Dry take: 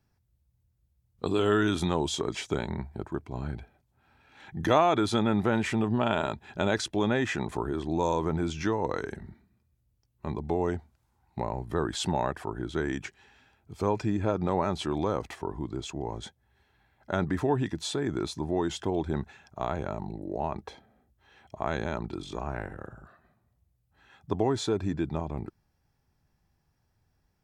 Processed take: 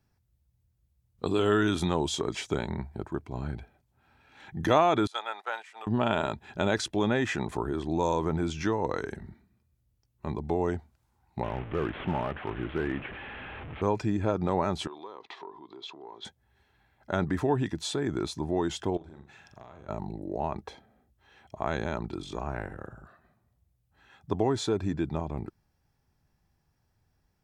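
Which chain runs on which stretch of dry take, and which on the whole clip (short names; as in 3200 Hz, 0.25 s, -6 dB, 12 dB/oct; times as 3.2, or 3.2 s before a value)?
5.07–5.87 gate -26 dBFS, range -19 dB + HPF 680 Hz 24 dB/oct
11.43–13.82 delta modulation 16 kbps, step -35 dBFS + notch 960 Hz, Q 25 + hard clip -20.5 dBFS
14.87–16.25 compressor 4:1, threshold -40 dBFS + speaker cabinet 400–4800 Hz, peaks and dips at 400 Hz +6 dB, 570 Hz -6 dB, 1000 Hz +8 dB, 1500 Hz -4 dB, 3700 Hz +9 dB
18.97–19.89 compressor 4:1, threshold -48 dBFS + flutter echo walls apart 7.3 m, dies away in 0.4 s
whole clip: dry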